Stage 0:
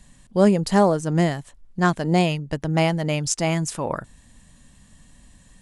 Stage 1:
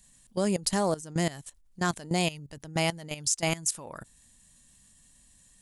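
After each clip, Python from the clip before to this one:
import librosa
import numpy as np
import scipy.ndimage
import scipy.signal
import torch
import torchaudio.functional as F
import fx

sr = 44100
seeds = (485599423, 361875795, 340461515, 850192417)

y = scipy.signal.lfilter([1.0, -0.8], [1.0], x)
y = fx.level_steps(y, sr, step_db=17)
y = F.gain(torch.from_numpy(y), 8.5).numpy()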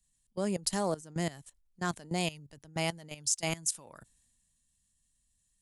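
y = fx.band_widen(x, sr, depth_pct=40)
y = F.gain(torch.from_numpy(y), -5.5).numpy()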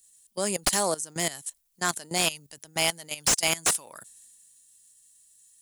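y = fx.riaa(x, sr, side='recording')
y = fx.slew_limit(y, sr, full_power_hz=320.0)
y = F.gain(torch.from_numpy(y), 6.5).numpy()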